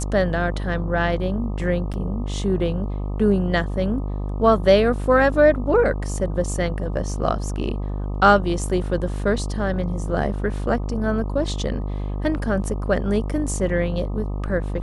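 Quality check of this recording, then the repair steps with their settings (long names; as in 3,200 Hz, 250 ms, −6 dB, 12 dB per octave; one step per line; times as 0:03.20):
mains buzz 50 Hz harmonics 25 −26 dBFS
0:01.93–0:01.94: drop-out 7.9 ms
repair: hum removal 50 Hz, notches 25
repair the gap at 0:01.93, 7.9 ms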